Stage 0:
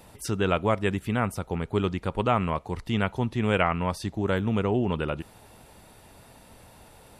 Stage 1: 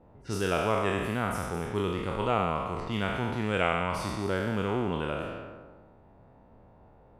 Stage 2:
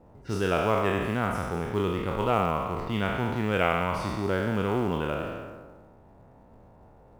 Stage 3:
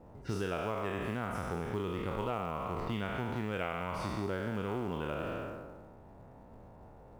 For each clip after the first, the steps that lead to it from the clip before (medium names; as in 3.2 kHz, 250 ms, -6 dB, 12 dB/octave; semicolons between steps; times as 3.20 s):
spectral sustain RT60 1.71 s; level-controlled noise filter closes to 790 Hz, open at -21 dBFS; trim -6.5 dB
treble shelf 5.3 kHz -10 dB; in parallel at -9 dB: short-mantissa float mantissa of 2-bit
compression, threshold -32 dBFS, peak gain reduction 12.5 dB